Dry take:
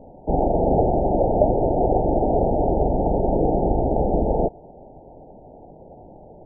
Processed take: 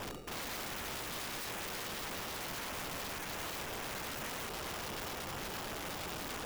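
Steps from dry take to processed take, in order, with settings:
reversed playback
downward compressor 6 to 1, threshold −33 dBFS, peak gain reduction 20 dB
reversed playback
brickwall limiter −32 dBFS, peak gain reduction 10 dB
flutter between parallel walls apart 9.3 metres, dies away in 0.3 s
decimation without filtering 21×
formants moved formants −4 semitones
wrap-around overflow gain 42.5 dB
level +6 dB

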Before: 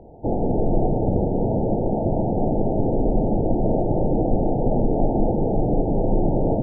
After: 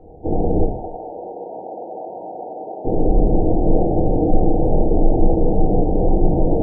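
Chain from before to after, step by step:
0:00.64–0:02.85: high-pass filter 850 Hz 12 dB per octave
convolution reverb RT60 0.50 s, pre-delay 3 ms, DRR −4.5 dB
level −5.5 dB

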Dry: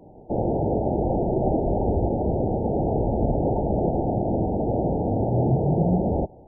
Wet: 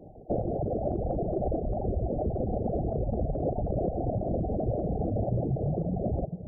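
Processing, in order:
spectral envelope exaggerated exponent 2
downward compressor, threshold −24 dBFS, peak gain reduction 8.5 dB
feedback delay with all-pass diffusion 511 ms, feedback 44%, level −7.5 dB
reverb reduction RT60 0.98 s

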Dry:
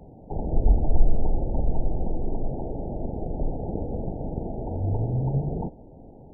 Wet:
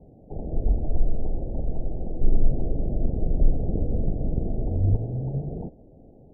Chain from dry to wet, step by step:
Butterworth low-pass 710 Hz 36 dB per octave
0:02.21–0:04.96: spectral tilt −2.5 dB per octave
level −3.5 dB

